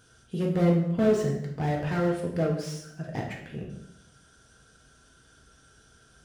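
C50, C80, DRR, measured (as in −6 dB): 5.5 dB, 8.5 dB, −1.0 dB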